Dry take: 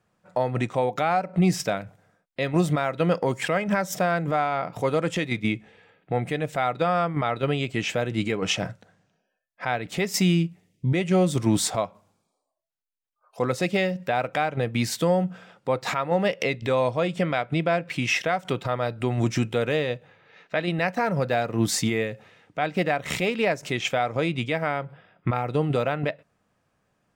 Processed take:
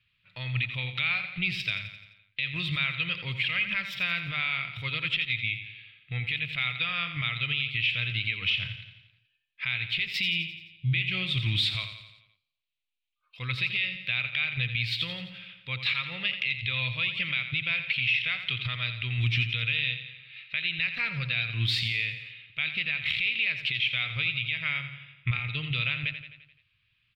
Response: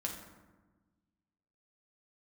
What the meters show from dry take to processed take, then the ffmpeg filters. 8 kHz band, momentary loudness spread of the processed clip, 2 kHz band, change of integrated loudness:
below −20 dB, 10 LU, +3.0 dB, −2.5 dB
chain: -af "firequalizer=gain_entry='entry(120,0);entry(180,-17);entry(310,-23);entry(780,-29);entry(1100,-13);entry(1600,-7);entry(2400,13);entry(3800,10);entry(6300,-24);entry(16000,-16)':delay=0.05:min_phase=1,alimiter=limit=-16.5dB:level=0:latency=1:release=148,aecho=1:1:86|172|258|344|430|516:0.316|0.174|0.0957|0.0526|0.0289|0.0159"

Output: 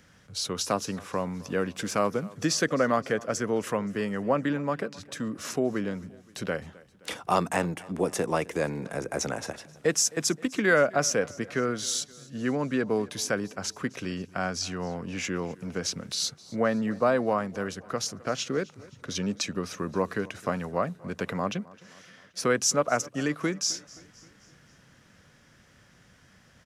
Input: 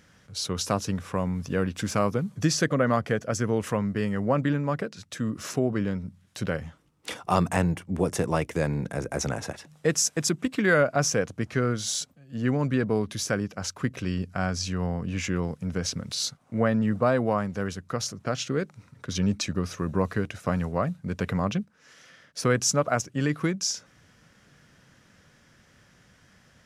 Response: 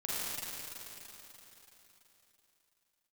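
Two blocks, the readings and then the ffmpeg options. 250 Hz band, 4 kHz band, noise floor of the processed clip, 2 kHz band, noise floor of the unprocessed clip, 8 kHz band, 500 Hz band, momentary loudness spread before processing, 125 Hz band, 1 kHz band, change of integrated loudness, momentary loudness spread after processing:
−3.0 dB, 0.0 dB, −59 dBFS, 0.0 dB, −60 dBFS, 0.0 dB, 0.0 dB, 9 LU, −8.0 dB, 0.0 dB, −1.5 dB, 11 LU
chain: -filter_complex "[0:a]acrossover=split=200|1500|2400[link_01][link_02][link_03][link_04];[link_01]acompressor=threshold=-44dB:ratio=6[link_05];[link_05][link_02][link_03][link_04]amix=inputs=4:normalize=0,aecho=1:1:262|524|786|1048:0.0794|0.0421|0.0223|0.0118"

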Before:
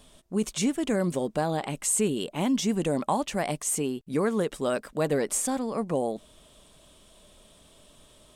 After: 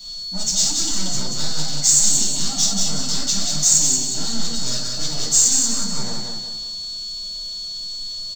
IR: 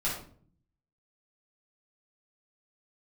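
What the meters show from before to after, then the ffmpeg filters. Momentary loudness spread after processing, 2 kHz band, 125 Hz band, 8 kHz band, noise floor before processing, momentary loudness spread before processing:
14 LU, −0.5 dB, +2.0 dB, +16.5 dB, −57 dBFS, 4 LU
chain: -filter_complex "[0:a]equalizer=frequency=430:width=1.4:gain=-7,aresample=16000,aeval=exprs='0.0316*(abs(mod(val(0)/0.0316+3,4)-2)-1)':channel_layout=same,aresample=44100,aexciter=amount=12.9:drive=2.9:freq=3700,aeval=exprs='val(0)+0.0141*sin(2*PI*4400*n/s)':channel_layout=same,acrossover=split=370|3300[link_01][link_02][link_03];[link_02]alimiter=level_in=10.5dB:limit=-24dB:level=0:latency=1,volume=-10.5dB[link_04];[link_03]acrusher=bits=5:mode=log:mix=0:aa=0.000001[link_05];[link_01][link_04][link_05]amix=inputs=3:normalize=0,aecho=1:1:183|366|549|732|915:0.631|0.265|0.111|0.0467|0.0196[link_06];[1:a]atrim=start_sample=2205,atrim=end_sample=4410[link_07];[link_06][link_07]afir=irnorm=-1:irlink=0,volume=-3dB"

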